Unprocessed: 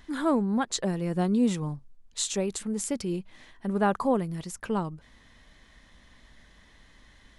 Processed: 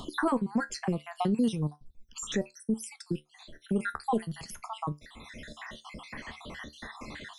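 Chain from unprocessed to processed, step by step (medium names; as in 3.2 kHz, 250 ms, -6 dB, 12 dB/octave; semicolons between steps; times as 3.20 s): random holes in the spectrogram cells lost 62%; feedback comb 74 Hz, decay 0.17 s, harmonics all, mix 60%; 1.52–3.79 s: phase shifter stages 12, 1.1 Hz, lowest notch 650–2600 Hz; three bands compressed up and down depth 70%; trim +5.5 dB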